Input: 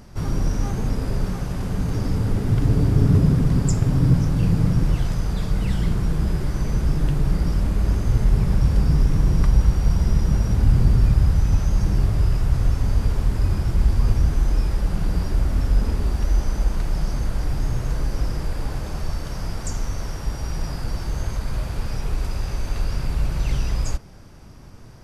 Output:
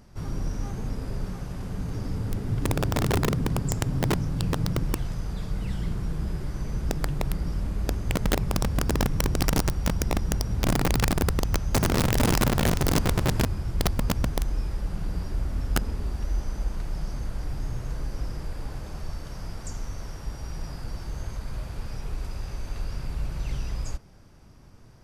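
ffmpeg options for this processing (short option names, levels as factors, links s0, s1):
-filter_complex "[0:a]asettb=1/sr,asplit=3[s0][s1][s2];[s0]atrim=end=11.744[s3];[s1]atrim=start=11.74:end=13.45,asetpts=PTS-STARTPTS,afade=t=in:d=0.004:c=qsin,afade=t=out:st=1.706:d=0.004:c=qsin,acontrast=31[s4];[s2]atrim=start=13.446[s5];[s3][s4]acrossfade=d=0.004:c1=hsin:c2=qsin[s6];[s6][s5]acrossfade=d=0.004:c1=qsin:c2=hsin,aeval=exprs='(mod(2.82*val(0)+1,2)-1)/2.82':c=same,volume=0.398"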